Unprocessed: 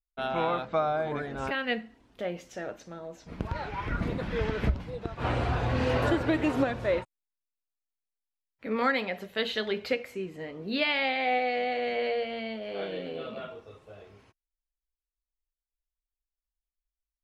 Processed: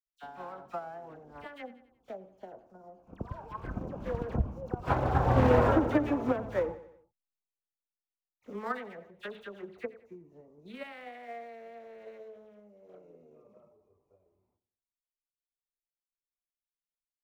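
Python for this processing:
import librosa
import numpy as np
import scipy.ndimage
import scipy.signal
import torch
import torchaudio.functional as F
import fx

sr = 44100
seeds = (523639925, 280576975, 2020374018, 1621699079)

p1 = fx.wiener(x, sr, points=25)
p2 = fx.doppler_pass(p1, sr, speed_mps=26, closest_m=6.2, pass_at_s=5.39)
p3 = fx.sample_hold(p2, sr, seeds[0], rate_hz=6400.0, jitter_pct=20)
p4 = p2 + (p3 * librosa.db_to_amplitude(-9.5))
p5 = fx.high_shelf(p4, sr, hz=4700.0, db=-11.0)
p6 = fx.echo_feedback(p5, sr, ms=91, feedback_pct=45, wet_db=-16)
p7 = fx.rider(p6, sr, range_db=5, speed_s=2.0)
p8 = fx.peak_eq(p7, sr, hz=1000.0, db=6.0, octaves=1.8)
p9 = fx.dispersion(p8, sr, late='lows', ms=64.0, hz=1800.0)
y = fx.transient(p9, sr, attack_db=8, sustain_db=4)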